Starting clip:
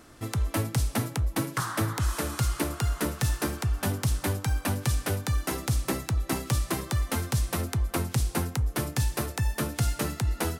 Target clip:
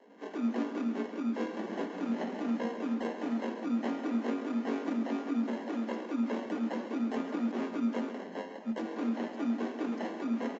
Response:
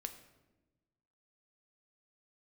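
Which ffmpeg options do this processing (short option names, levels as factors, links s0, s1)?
-filter_complex "[0:a]asplit=3[s0][s1][s2];[s0]afade=t=out:st=8.12:d=0.02[s3];[s1]highpass=f=290:w=0.5412,highpass=f=290:w=1.3066,afade=t=in:st=8.12:d=0.02,afade=t=out:st=8.65:d=0.02[s4];[s2]afade=t=in:st=8.65:d=0.02[s5];[s3][s4][s5]amix=inputs=3:normalize=0,alimiter=limit=0.106:level=0:latency=1,flanger=delay=20:depth=2.7:speed=1.9,acrusher=samples=39:mix=1:aa=0.000001,afreqshift=180,flanger=delay=4.2:depth=5.5:regen=-72:speed=0.38:shape=sinusoidal,aecho=1:1:135|270|405|540:0.316|0.114|0.041|0.0148,asplit=2[s6][s7];[1:a]atrim=start_sample=2205,lowpass=3100[s8];[s7][s8]afir=irnorm=-1:irlink=0,volume=1.78[s9];[s6][s9]amix=inputs=2:normalize=0,volume=0.531" -ar 16000 -c:a aac -b:a 24k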